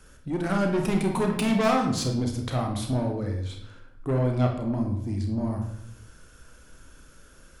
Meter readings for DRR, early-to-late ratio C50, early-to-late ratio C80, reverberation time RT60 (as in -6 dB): 1.5 dB, 5.5 dB, 9.5 dB, 0.80 s